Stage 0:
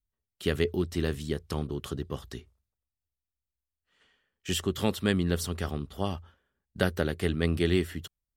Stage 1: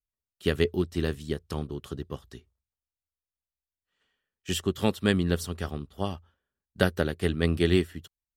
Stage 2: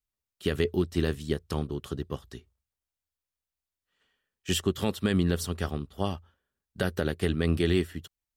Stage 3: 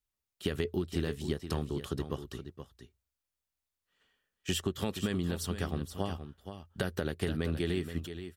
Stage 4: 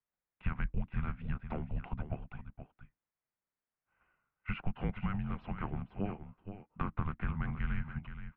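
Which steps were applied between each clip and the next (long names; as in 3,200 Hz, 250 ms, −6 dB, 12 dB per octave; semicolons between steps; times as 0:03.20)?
notch filter 2,100 Hz, Q 22; expander for the loud parts 1.5 to 1, over −46 dBFS; level +3.5 dB
brickwall limiter −15.5 dBFS, peak gain reduction 10.5 dB; level +2 dB
downward compressor, threshold −28 dBFS, peak gain reduction 8.5 dB; single-tap delay 474 ms −10 dB
single-sideband voice off tune −390 Hz 210–2,500 Hz; level +1 dB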